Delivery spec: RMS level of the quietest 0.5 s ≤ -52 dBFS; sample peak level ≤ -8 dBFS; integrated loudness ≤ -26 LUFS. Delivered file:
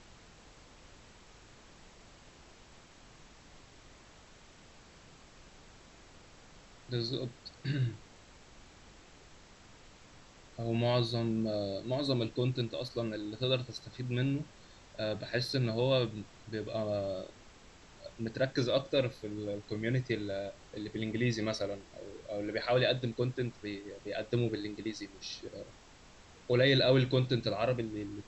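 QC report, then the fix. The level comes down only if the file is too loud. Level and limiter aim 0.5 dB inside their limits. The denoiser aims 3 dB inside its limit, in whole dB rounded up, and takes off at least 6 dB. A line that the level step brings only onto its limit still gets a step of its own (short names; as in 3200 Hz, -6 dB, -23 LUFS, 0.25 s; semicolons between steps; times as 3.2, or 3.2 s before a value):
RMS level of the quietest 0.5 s -57 dBFS: OK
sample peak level -15.0 dBFS: OK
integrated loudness -33.5 LUFS: OK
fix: none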